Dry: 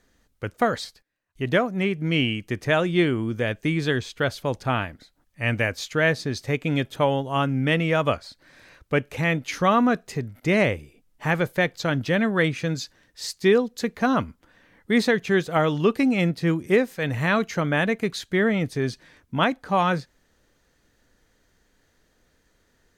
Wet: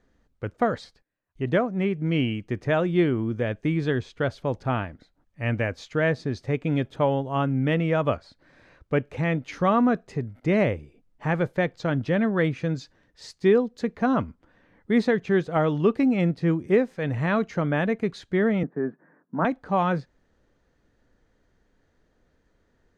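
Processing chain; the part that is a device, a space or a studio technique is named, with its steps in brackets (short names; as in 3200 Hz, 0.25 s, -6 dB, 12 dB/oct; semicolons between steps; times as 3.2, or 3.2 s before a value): 18.63–19.45 Chebyshev band-pass 160–1700 Hz, order 4; through cloth (LPF 7500 Hz 12 dB/oct; high shelf 1900 Hz -12 dB)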